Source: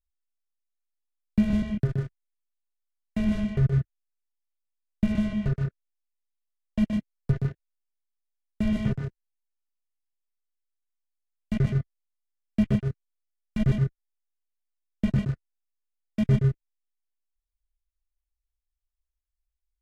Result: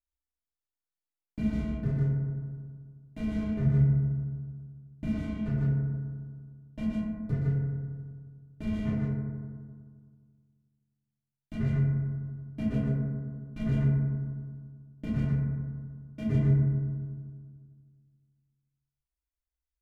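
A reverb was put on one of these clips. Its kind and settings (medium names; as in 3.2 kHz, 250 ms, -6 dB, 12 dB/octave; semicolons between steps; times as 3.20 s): FDN reverb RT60 1.8 s, low-frequency decay 1.2×, high-frequency decay 0.25×, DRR -9.5 dB; trim -14 dB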